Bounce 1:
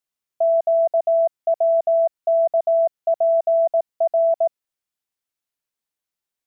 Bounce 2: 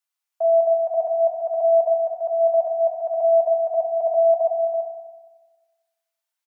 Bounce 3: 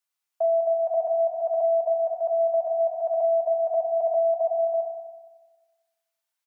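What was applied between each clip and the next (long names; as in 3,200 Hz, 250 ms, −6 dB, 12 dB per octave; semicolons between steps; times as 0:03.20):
high-pass filter 730 Hz 24 dB per octave; single-tap delay 334 ms −6 dB; feedback delay network reverb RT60 1.3 s, high-frequency decay 0.5×, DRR 1 dB
downward compressor, threshold −20 dBFS, peak gain reduction 7 dB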